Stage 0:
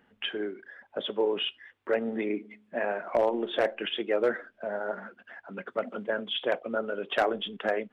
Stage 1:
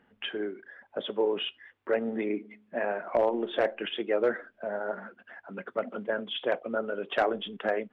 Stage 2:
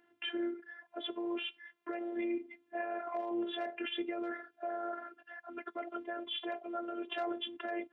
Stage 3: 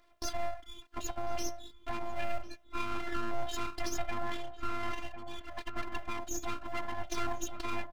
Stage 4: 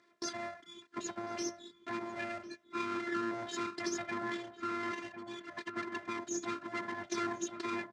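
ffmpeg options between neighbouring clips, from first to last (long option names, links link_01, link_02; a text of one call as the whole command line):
ffmpeg -i in.wav -af "lowpass=frequency=3100:poles=1" out.wav
ffmpeg -i in.wav -af "alimiter=level_in=2dB:limit=-24dB:level=0:latency=1:release=26,volume=-2dB,afftfilt=real='hypot(re,im)*cos(PI*b)':imag='0':win_size=512:overlap=0.75,highpass=frequency=130:width=0.5412,highpass=frequency=130:width=1.3066,volume=1dB" out.wav
ffmpeg -i in.wav -filter_complex "[0:a]acrossover=split=200[link_01][link_02];[link_01]acrusher=samples=16:mix=1:aa=0.000001:lfo=1:lforange=16:lforate=1.4[link_03];[link_03][link_02]amix=inputs=2:normalize=0,aeval=exprs='abs(val(0))':channel_layout=same,asplit=2[link_04][link_05];[link_05]adelay=1050,volume=-8dB,highshelf=frequency=4000:gain=-23.6[link_06];[link_04][link_06]amix=inputs=2:normalize=0,volume=5dB" out.wav
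ffmpeg -i in.wav -af "highpass=frequency=130:width=0.5412,highpass=frequency=130:width=1.3066,equalizer=frequency=200:width_type=q:width=4:gain=8,equalizer=frequency=380:width_type=q:width=4:gain=7,equalizer=frequency=740:width_type=q:width=4:gain=-9,equalizer=frequency=1800:width_type=q:width=4:gain=5,equalizer=frequency=2900:width_type=q:width=4:gain=-6,lowpass=frequency=8100:width=0.5412,lowpass=frequency=8100:width=1.3066" out.wav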